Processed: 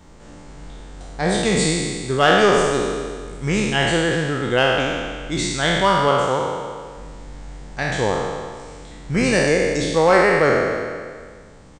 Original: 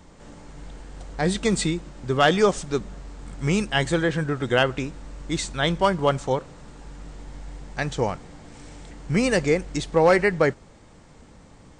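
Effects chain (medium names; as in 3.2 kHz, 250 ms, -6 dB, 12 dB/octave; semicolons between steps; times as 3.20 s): spectral sustain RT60 1.78 s; 6.08–6.97 s: high-pass 110 Hz 6 dB/octave; speakerphone echo 300 ms, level -19 dB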